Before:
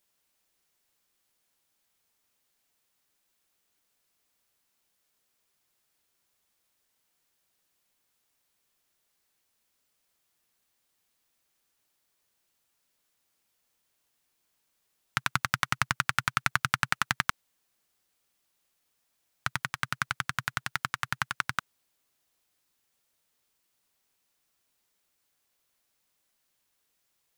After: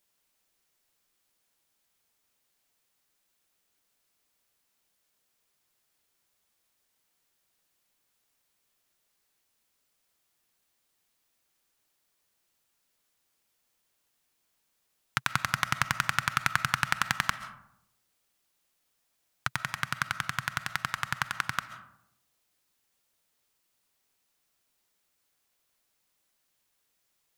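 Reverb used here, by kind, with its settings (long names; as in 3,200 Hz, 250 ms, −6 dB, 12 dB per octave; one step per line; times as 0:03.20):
comb and all-pass reverb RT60 0.79 s, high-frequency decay 0.4×, pre-delay 95 ms, DRR 12.5 dB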